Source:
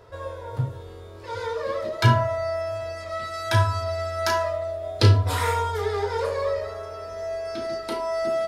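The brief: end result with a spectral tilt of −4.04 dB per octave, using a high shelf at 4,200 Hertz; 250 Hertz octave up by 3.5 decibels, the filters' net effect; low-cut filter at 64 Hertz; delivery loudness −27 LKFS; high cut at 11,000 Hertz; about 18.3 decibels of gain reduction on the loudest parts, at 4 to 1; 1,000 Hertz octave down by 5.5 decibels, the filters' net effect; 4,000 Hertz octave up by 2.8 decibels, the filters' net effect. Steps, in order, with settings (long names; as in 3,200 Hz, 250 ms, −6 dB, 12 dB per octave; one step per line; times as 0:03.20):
high-pass filter 64 Hz
low-pass filter 11,000 Hz
parametric band 250 Hz +5.5 dB
parametric band 1,000 Hz −7 dB
parametric band 4,000 Hz +7.5 dB
high-shelf EQ 4,200 Hz −6.5 dB
downward compressor 4 to 1, threshold −34 dBFS
level +9.5 dB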